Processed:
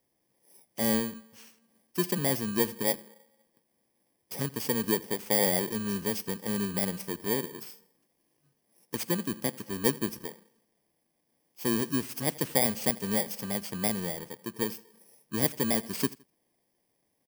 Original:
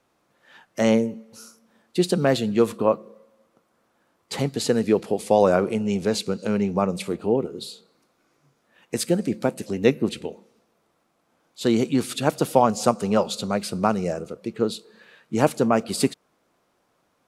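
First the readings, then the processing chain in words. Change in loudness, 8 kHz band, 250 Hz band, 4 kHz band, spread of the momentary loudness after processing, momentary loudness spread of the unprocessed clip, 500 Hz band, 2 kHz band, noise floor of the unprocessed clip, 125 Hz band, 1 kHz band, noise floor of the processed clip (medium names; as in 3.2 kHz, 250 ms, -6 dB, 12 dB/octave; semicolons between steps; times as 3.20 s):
-6.5 dB, -0.5 dB, -8.5 dB, -4.0 dB, 11 LU, 10 LU, -11.5 dB, -3.5 dB, -69 dBFS, -8.0 dB, -12.0 dB, -76 dBFS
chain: bit-reversed sample order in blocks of 32 samples; dynamic bell 1.1 kHz, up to -4 dB, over -33 dBFS, Q 0.92; on a send: feedback delay 82 ms, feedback 34%, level -23 dB; on the sum: trim -7.5 dB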